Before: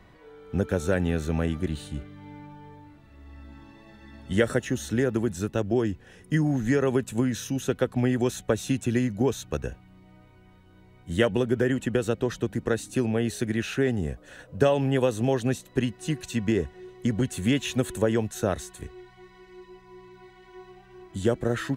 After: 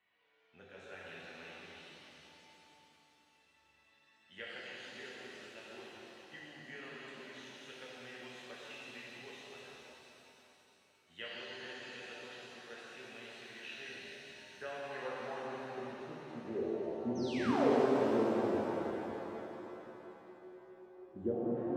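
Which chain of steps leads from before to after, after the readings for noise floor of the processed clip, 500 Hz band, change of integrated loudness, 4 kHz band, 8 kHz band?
-70 dBFS, -11.5 dB, -13.0 dB, -10.5 dB, -21.5 dB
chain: high shelf 2600 Hz -11 dB; painted sound fall, 17.15–17.7, 380–6500 Hz -16 dBFS; band-pass sweep 2800 Hz -> 320 Hz, 14.14–17.3; shimmer reverb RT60 3.6 s, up +7 st, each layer -8 dB, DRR -6.5 dB; gain -9 dB

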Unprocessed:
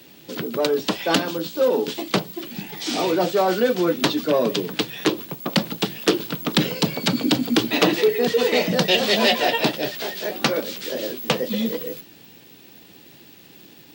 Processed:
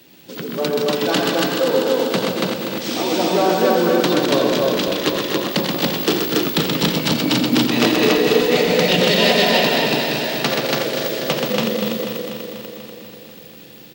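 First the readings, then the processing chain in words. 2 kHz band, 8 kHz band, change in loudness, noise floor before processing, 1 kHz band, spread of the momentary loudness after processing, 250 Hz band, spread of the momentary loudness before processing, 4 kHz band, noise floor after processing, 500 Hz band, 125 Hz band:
+4.5 dB, +4.0 dB, +4.0 dB, -48 dBFS, +4.0 dB, 11 LU, +4.0 dB, 9 LU, +4.0 dB, -40 dBFS, +4.0 dB, +4.5 dB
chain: regenerating reverse delay 0.122 s, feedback 82%, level -6.5 dB; on a send: loudspeakers at several distances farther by 29 m -11 dB, 44 m -4 dB, 97 m -1 dB; on the sum: gain -1.5 dB

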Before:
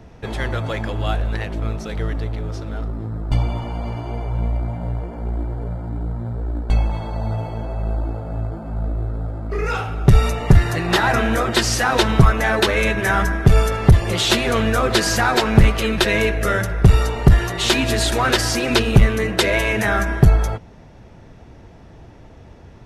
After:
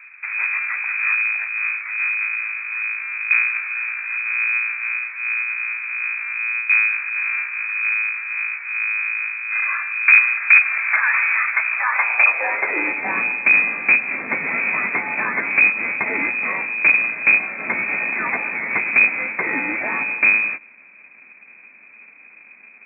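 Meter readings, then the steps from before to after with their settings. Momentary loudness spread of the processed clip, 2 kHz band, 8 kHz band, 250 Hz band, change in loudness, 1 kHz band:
9 LU, +8.5 dB, under -40 dB, -14.5 dB, +1.5 dB, -5.0 dB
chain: half-waves squared off; inverted band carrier 2500 Hz; high-pass sweep 1400 Hz -> 220 Hz, 11.68–13.15; gain -9 dB

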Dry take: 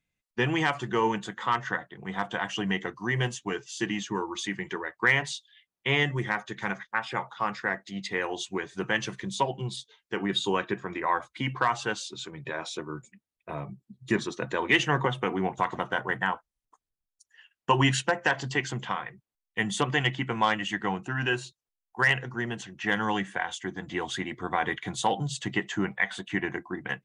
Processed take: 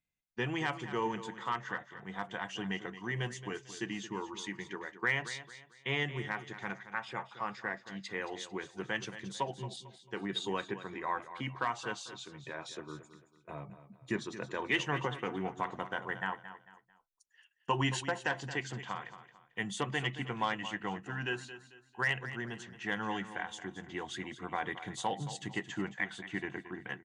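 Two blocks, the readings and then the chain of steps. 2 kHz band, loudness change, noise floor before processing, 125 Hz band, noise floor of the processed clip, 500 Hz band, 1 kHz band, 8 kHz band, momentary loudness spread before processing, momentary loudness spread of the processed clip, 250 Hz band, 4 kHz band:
-8.5 dB, -8.5 dB, under -85 dBFS, -8.5 dB, -67 dBFS, -8.0 dB, -8.5 dB, -8.5 dB, 12 LU, 12 LU, -8.0 dB, -8.5 dB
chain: feedback echo 0.223 s, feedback 34%, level -13 dB; gain -8.5 dB

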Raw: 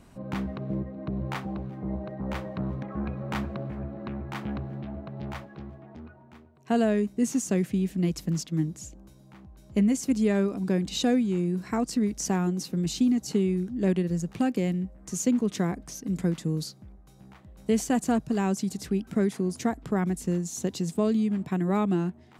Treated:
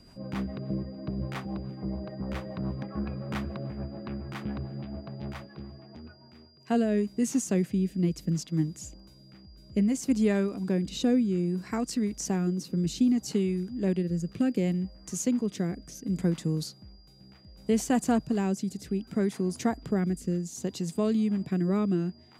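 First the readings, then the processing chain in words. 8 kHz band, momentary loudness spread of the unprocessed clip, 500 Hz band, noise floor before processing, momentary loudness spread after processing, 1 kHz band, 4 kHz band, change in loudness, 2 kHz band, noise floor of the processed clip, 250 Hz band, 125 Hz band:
-2.0 dB, 11 LU, -2.0 dB, -53 dBFS, 12 LU, -3.5 dB, -3.0 dB, -1.5 dB, -3.0 dB, -54 dBFS, -1.0 dB, -1.0 dB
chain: rotary speaker horn 7 Hz, later 0.65 Hz, at 6.12; whine 4800 Hz -59 dBFS

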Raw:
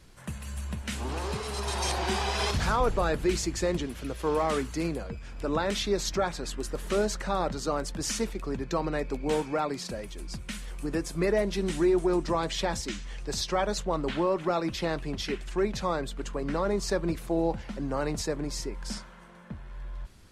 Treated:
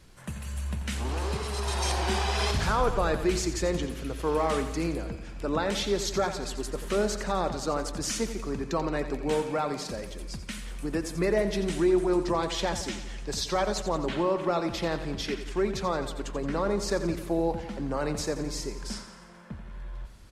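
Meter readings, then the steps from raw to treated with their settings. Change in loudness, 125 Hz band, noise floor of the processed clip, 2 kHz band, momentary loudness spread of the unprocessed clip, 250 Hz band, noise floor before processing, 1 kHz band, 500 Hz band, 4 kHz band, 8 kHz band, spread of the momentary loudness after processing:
+0.5 dB, +1.0 dB, -43 dBFS, +0.5 dB, 11 LU, +0.5 dB, -44 dBFS, +0.5 dB, +0.5 dB, +0.5 dB, +0.5 dB, 12 LU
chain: feedback echo 87 ms, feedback 59%, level -11 dB

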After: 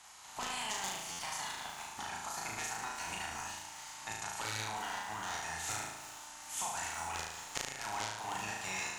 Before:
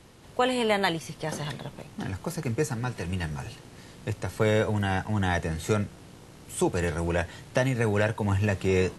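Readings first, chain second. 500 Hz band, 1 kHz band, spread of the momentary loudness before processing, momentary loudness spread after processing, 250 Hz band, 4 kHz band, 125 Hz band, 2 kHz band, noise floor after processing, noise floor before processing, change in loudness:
-22.5 dB, -6.0 dB, 13 LU, 6 LU, -23.0 dB, -4.0 dB, -24.5 dB, -8.0 dB, -50 dBFS, -50 dBFS, -11.0 dB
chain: spectral limiter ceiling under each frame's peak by 19 dB; resonant low shelf 640 Hz -8 dB, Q 3; added harmonics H 3 -8 dB, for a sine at -2.5 dBFS; compressor 5:1, threshold -48 dBFS, peak gain reduction 22 dB; bell 6800 Hz +10 dB 0.39 oct; on a send: flutter echo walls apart 6.3 m, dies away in 0.91 s; on the sum: stuck buffer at 1.11, samples 512, times 6; lo-fi delay 0.372 s, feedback 55%, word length 8-bit, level -14 dB; gain +7 dB

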